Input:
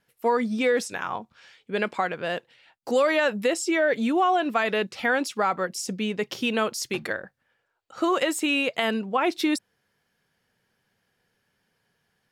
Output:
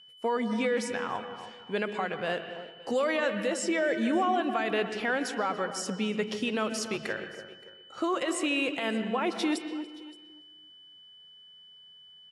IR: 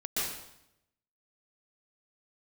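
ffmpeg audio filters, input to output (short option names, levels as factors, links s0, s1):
-filter_complex "[0:a]alimiter=limit=0.133:level=0:latency=1:release=125,aecho=1:1:572:0.075,asplit=2[s0][s1];[1:a]atrim=start_sample=2205,lowpass=3500[s2];[s1][s2]afir=irnorm=-1:irlink=0,volume=0.188[s3];[s0][s3]amix=inputs=2:normalize=0,aeval=exprs='val(0)+0.00398*sin(2*PI*3000*n/s)':c=same,asplit=2[s4][s5];[s5]adelay=287,lowpass=f=1200:p=1,volume=0.316,asplit=2[s6][s7];[s7]adelay=287,lowpass=f=1200:p=1,volume=0.27,asplit=2[s8][s9];[s9]adelay=287,lowpass=f=1200:p=1,volume=0.27[s10];[s6][s8][s10]amix=inputs=3:normalize=0[s11];[s4][s11]amix=inputs=2:normalize=0,volume=0.668" -ar 24000 -c:a aac -b:a 64k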